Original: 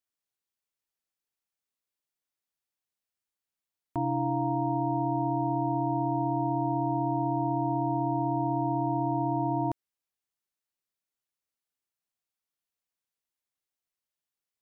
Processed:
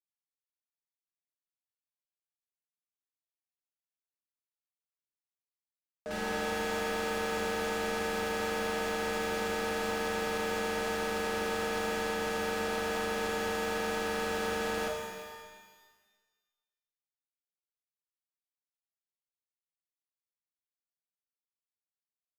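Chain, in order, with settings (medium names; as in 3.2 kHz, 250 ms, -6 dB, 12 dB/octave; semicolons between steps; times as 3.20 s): high-pass 650 Hz 12 dB/octave; gate with hold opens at -26 dBFS; in parallel at +1 dB: peak limiter -36 dBFS, peak gain reduction 10.5 dB; on the sum: waveshaping leveller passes 5; wide varispeed 0.653×; saturation -33 dBFS, distortion -16 dB; flange 1 Hz, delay 2.3 ms, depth 8.9 ms, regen +89%; on a send: delay 522 ms -23 dB; on the sum: pitch-shifted reverb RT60 1.4 s, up +12 st, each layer -8 dB, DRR 1 dB; trim +3.5 dB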